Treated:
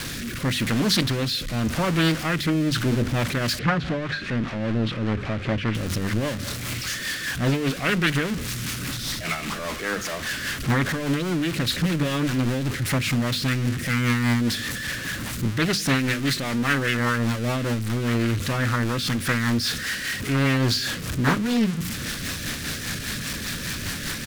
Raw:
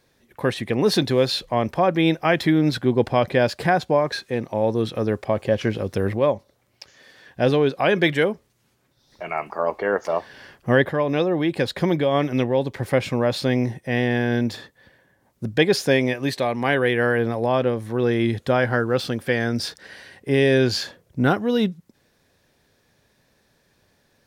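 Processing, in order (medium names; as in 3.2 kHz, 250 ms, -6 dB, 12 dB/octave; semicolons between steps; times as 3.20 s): jump at every zero crossing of -20 dBFS; high-order bell 590 Hz -11 dB; hum notches 50/100/150/200/250 Hz; delay 199 ms -22.5 dB; rotary cabinet horn 0.9 Hz, later 5 Hz, at 2.61 s; 3.59–5.75 s: low-pass 2.8 kHz 12 dB/octave; loudspeaker Doppler distortion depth 0.6 ms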